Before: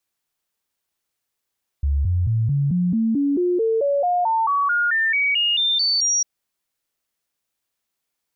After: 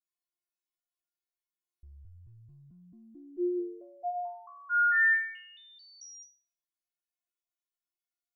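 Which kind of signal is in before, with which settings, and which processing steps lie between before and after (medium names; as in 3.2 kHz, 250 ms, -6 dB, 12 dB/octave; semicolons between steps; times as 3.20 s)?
stepped sine 70.7 Hz up, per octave 3, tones 20, 0.22 s, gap 0.00 s -16.5 dBFS
inharmonic resonator 350 Hz, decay 0.61 s, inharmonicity 0.002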